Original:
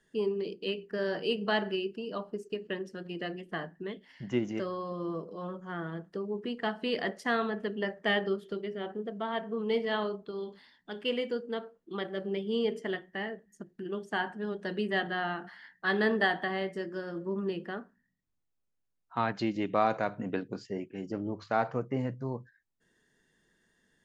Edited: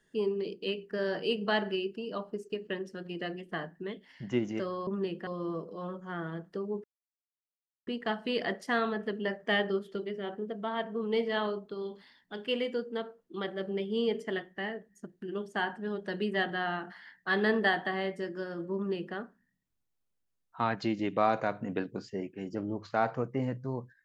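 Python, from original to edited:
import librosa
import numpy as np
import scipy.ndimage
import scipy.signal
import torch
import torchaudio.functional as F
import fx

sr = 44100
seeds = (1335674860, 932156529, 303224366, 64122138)

y = fx.edit(x, sr, fx.insert_silence(at_s=6.44, length_s=1.03),
    fx.duplicate(start_s=17.32, length_s=0.4, to_s=4.87), tone=tone)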